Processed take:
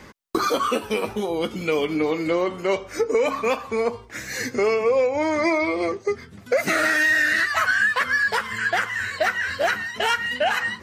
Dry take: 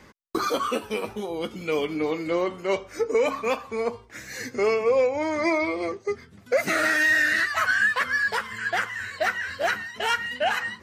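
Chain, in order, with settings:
downward compressor 2 to 1, threshold −27 dBFS, peak gain reduction 6 dB
level +6.5 dB

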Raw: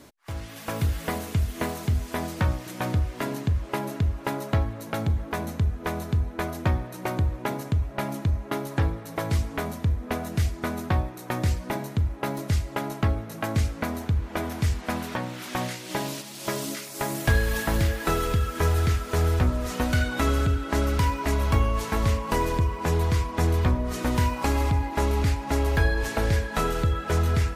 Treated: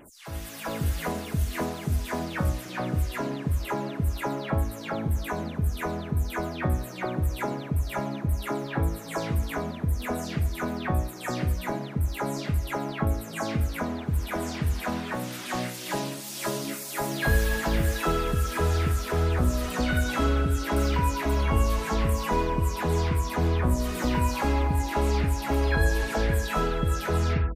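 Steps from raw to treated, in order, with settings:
every frequency bin delayed by itself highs early, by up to 226 ms

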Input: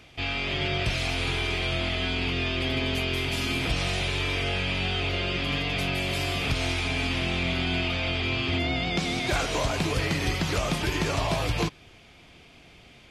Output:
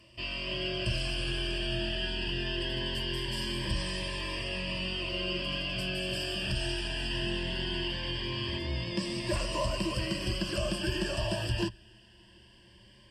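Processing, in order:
EQ curve with evenly spaced ripples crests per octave 1.3, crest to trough 17 dB
phaser whose notches keep moving one way rising 0.21 Hz
level −7 dB

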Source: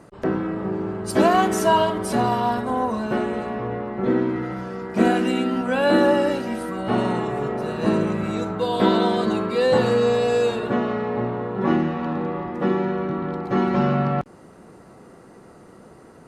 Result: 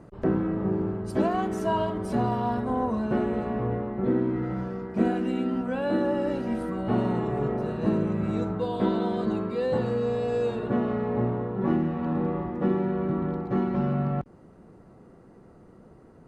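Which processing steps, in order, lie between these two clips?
spectral tilt −2.5 dB per octave
speech leveller within 4 dB 0.5 s
level −8.5 dB

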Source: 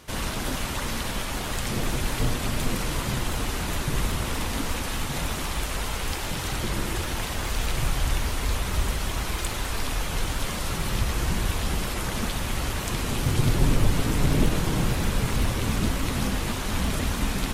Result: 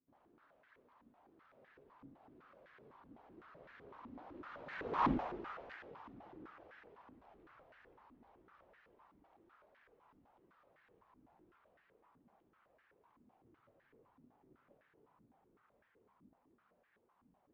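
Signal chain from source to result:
source passing by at 0:05.07, 29 m/s, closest 1.5 metres
high-frequency loss of the air 200 metres
band-pass on a step sequencer 7.9 Hz 260–1,700 Hz
level +13.5 dB

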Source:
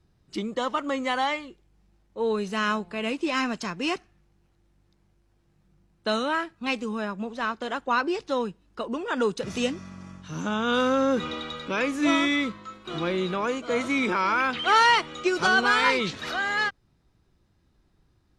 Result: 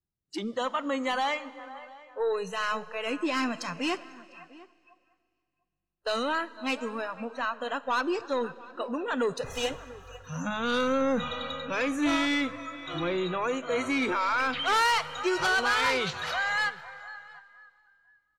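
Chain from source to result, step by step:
0:09.45–0:10.27: lower of the sound and its delayed copy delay 2.4 ms
on a send: repeating echo 501 ms, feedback 37%, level −18.5 dB
on the sum: soft clipping −21 dBFS, distortion −12 dB
noise reduction from a noise print of the clip's start 26 dB
slap from a distant wall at 120 metres, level −20 dB
four-comb reverb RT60 2.3 s, combs from 27 ms, DRR 18 dB

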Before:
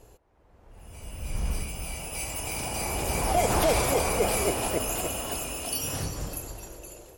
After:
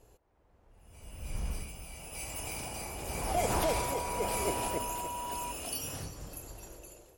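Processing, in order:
shaped tremolo triangle 0.93 Hz, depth 50%
0:03.51–0:05.51: steady tone 970 Hz −31 dBFS
level −5.5 dB

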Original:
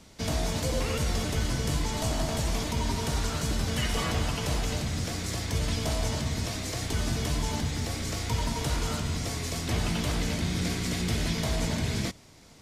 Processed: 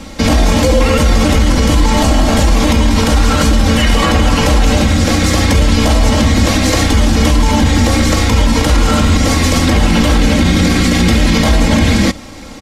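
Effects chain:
high-shelf EQ 4,000 Hz −8.5 dB
comb filter 3.7 ms, depth 71%
boost into a limiter +23.5 dB
level −1 dB

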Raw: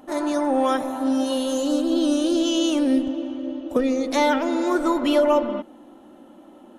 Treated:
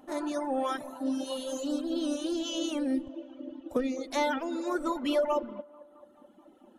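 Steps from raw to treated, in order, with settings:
delay with a band-pass on its return 217 ms, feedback 58%, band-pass 790 Hz, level −13.5 dB
reverb reduction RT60 1.4 s
level −7.5 dB

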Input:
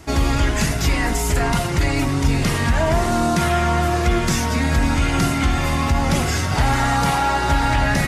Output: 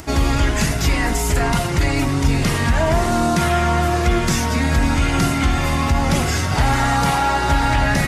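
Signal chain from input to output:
upward compression, threshold −33 dBFS
level +1 dB

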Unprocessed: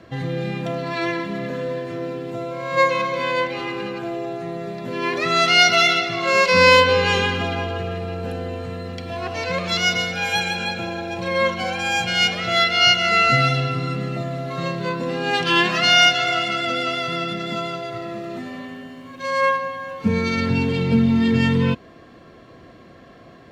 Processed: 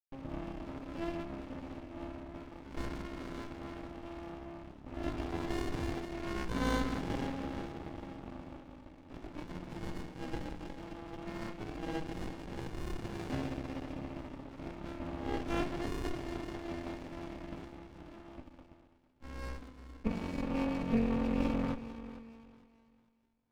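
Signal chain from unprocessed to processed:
high-pass filter 230 Hz 6 dB per octave
high-shelf EQ 3,500 Hz −7 dB
in parallel at −6 dB: sample-rate reduction 2,100 Hz, jitter 0%
on the sum: dead-zone distortion −29 dBFS
formant filter u
feedback echo with a high-pass in the loop 449 ms, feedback 41%, high-pass 510 Hz, level −12.5 dB
convolution reverb RT60 2.0 s, pre-delay 5 ms, DRR 11 dB
windowed peak hold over 65 samples
level +3.5 dB

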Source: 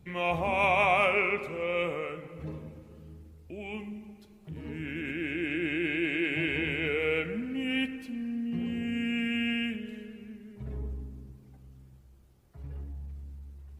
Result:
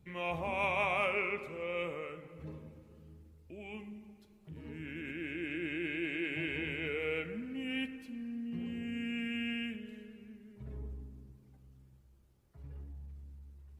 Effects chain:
notch filter 730 Hz, Q 17
level −7 dB

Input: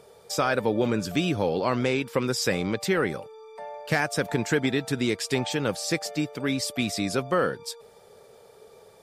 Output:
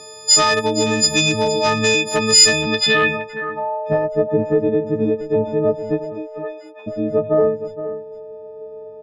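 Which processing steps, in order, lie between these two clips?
every partial snapped to a pitch grid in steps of 6 semitones
in parallel at −0.5 dB: downward compressor 4 to 1, threshold −31 dBFS, peak gain reduction 15 dB
on the sum: asymmetric clip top −14 dBFS
0:06.04–0:06.86: high-pass filter 340 Hz → 860 Hz 24 dB per octave
on a send: single-tap delay 468 ms −12.5 dB
on the sum: low-pass filter sweep 6,400 Hz → 550 Hz, 0:02.60–0:04.02
level +2 dB

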